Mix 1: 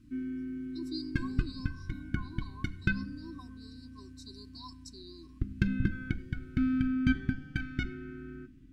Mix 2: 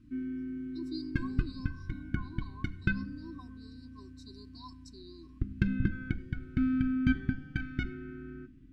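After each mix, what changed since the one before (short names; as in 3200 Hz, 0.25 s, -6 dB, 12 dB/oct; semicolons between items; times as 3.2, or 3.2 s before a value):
master: add high shelf 5000 Hz -11 dB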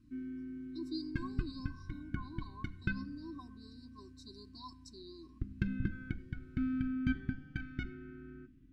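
background -6.0 dB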